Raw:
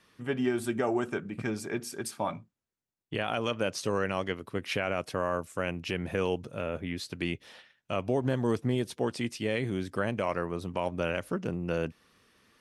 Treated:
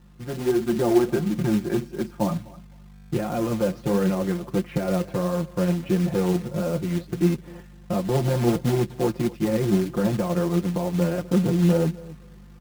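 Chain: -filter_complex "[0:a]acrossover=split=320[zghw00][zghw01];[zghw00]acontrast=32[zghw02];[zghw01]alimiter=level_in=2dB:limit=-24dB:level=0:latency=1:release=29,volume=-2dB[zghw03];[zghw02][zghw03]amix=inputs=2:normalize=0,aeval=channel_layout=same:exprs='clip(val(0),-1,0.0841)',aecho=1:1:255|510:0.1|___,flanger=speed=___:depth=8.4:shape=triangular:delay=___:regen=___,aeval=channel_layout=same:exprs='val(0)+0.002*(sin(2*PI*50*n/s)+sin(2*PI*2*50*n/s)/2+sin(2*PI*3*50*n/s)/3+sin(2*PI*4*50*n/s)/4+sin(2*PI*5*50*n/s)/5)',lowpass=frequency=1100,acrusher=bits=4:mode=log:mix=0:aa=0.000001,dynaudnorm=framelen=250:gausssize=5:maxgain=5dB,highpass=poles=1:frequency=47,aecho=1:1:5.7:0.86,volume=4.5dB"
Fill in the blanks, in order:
0.016, 1.5, 3.6, 48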